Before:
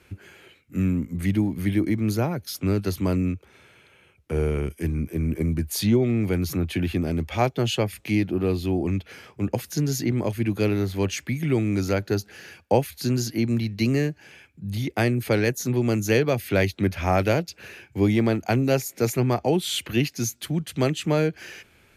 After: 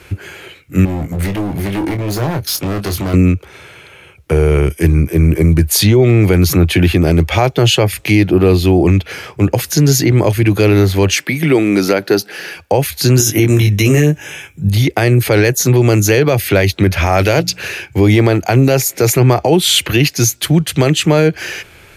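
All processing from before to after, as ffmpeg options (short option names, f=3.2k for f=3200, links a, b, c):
-filter_complex "[0:a]asettb=1/sr,asplit=3[a][b][c];[a]atrim=end=0.854[d];[b]atrim=start=0.85:end=3.14,asetpts=PTS-STARTPTS,afade=t=in:d=0.004:c=qsin,afade=t=out:st=2.286:d=0.004:c=qsin,acompressor=threshold=-27dB:ratio=3:attack=3.2:release=140:knee=1:detection=peak,asoftclip=type=hard:threshold=-30.5dB,asplit=2[e][f];[f]adelay=25,volume=-7.5dB[g];[e][g]amix=inputs=2:normalize=0,atrim=end_sample=100989[h];[c]atrim=start=3.136[i];[d][h]acrossfade=d=0.004:c1=hsin:c2=qsin[j];[j][i]acrossfade=d=0.004:c1=qsin:c2=hsin,asettb=1/sr,asplit=3[k][l][m];[k]atrim=end=11.154[n];[l]atrim=start=11.15:end=12.57,asetpts=PTS-STARTPTS,afade=t=in:d=0.004:c=qsin,afade=t=out:st=1.416:d=0.004:c=qsin,highpass=f=170:w=0.5412,highpass=f=170:w=1.3066,equalizer=f=6.7k:w=7.5:g=-9[o];[m]atrim=start=12.566[p];[n][o]acrossfade=d=0.004:c1=hsin:c2=qsin[q];[q][p]acrossfade=d=0.004:c1=qsin:c2=hsin,asettb=1/sr,asplit=3[r][s][t];[r]atrim=end=13.184[u];[s]atrim=start=13.18:end=14.69,asetpts=PTS-STARTPTS,afade=t=in:d=0.004:c=qsin,afade=t=out:st=1.506:d=0.004:c=qsin,asuperstop=centerf=4500:order=4:qfactor=3.1,bass=f=250:g=1,treble=f=4k:g=7,asplit=2[v][w];[w]adelay=20,volume=-3.5dB[x];[v][x]amix=inputs=2:normalize=0,atrim=end_sample=66591[y];[t]atrim=start=14.686[z];[u][y]acrossfade=d=0.004:c1=hsin:c2=qsin[aa];[aa][z]acrossfade=d=0.004:c1=qsin:c2=hsin,asettb=1/sr,asplit=3[ab][ac][ad];[ab]atrim=end=17.064[ae];[ac]atrim=start=17.06:end=17.86,asetpts=PTS-STARTPTS,afade=t=in:d=0.004:c=qsin,afade=t=out:st=0.796:d=0.004:c=qsin,equalizer=f=6.1k:t=o:w=3:g=4.5,bandreject=f=60:t=h:w=6,bandreject=f=120:t=h:w=6,bandreject=f=180:t=h:w=6,bandreject=f=240:t=h:w=6,bandreject=f=300:t=h:w=6[af];[ad]atrim=start=17.856[ag];[ae][af]acrossfade=d=0.004:c1=hsin:c2=qsin[ah];[ah][ag]acrossfade=d=0.004:c1=qsin:c2=hsin,equalizer=f=230:t=o:w=0.34:g=-12,alimiter=level_in=17.5dB:limit=-1dB:release=50:level=0:latency=1,volume=-1dB"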